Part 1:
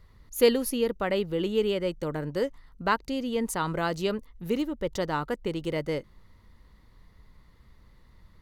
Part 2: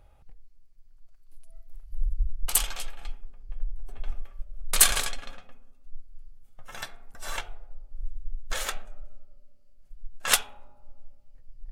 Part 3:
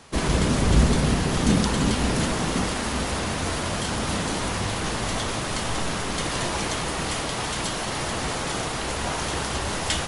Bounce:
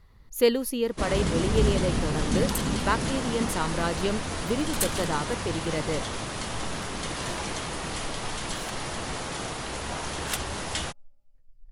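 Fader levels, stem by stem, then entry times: −0.5, −10.0, −5.5 decibels; 0.00, 0.00, 0.85 seconds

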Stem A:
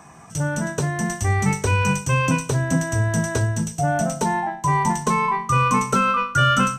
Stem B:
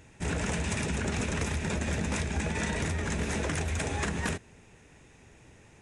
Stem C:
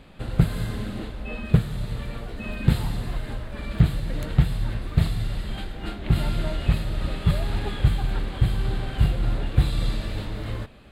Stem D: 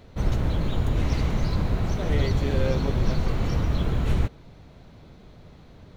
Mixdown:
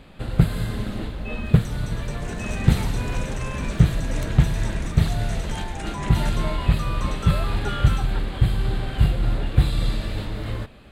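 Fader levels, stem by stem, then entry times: −15.0, −6.0, +2.0, −12.5 decibels; 1.30, 2.00, 0.00, 0.60 seconds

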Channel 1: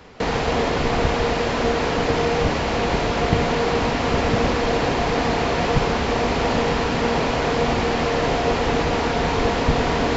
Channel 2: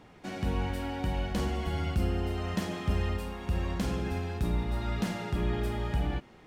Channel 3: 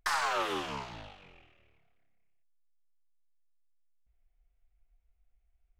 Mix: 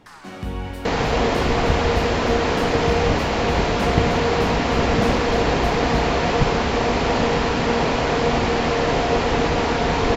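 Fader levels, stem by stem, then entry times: +1.0, +2.0, −13.5 decibels; 0.65, 0.00, 0.00 seconds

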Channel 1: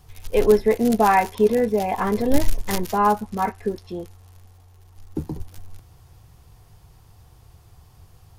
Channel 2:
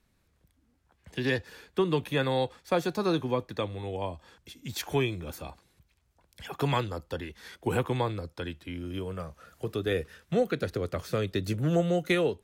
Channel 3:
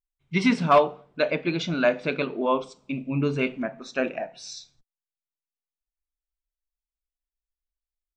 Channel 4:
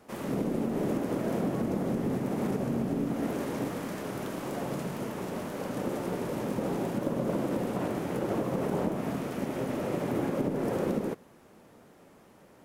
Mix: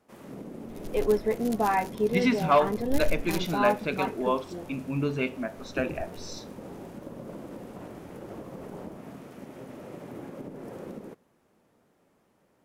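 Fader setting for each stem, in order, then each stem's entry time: −8.5 dB, muted, −3.5 dB, −11.0 dB; 0.60 s, muted, 1.80 s, 0.00 s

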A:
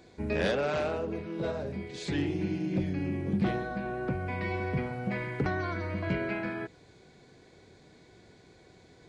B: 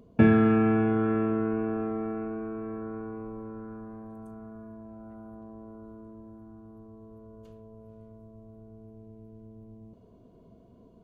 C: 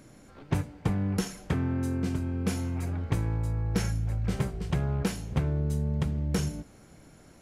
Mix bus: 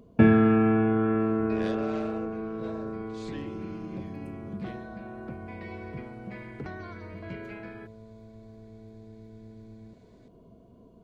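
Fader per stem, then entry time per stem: −9.0 dB, +1.0 dB, muted; 1.20 s, 0.00 s, muted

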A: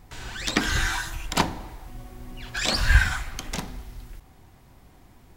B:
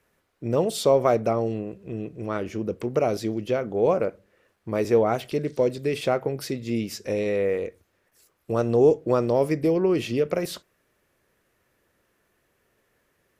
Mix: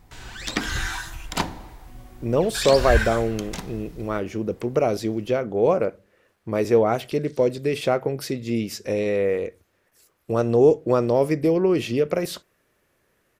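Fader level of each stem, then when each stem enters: −2.5, +2.0 decibels; 0.00, 1.80 seconds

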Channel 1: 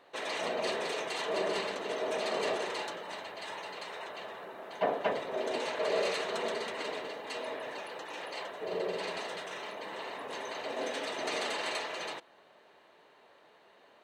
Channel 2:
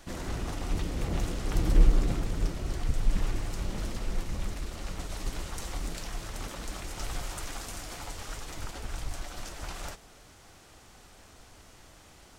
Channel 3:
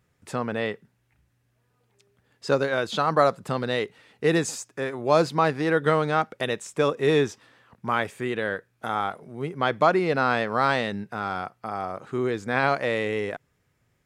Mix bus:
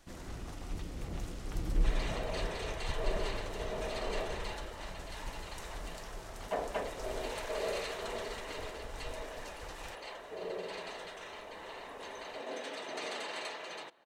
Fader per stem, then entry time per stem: −5.5 dB, −9.5 dB, muted; 1.70 s, 0.00 s, muted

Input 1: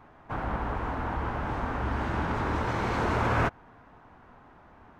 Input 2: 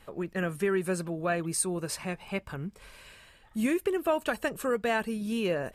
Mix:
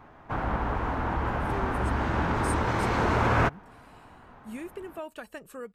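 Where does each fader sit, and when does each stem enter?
+2.5, −11.5 decibels; 0.00, 0.90 seconds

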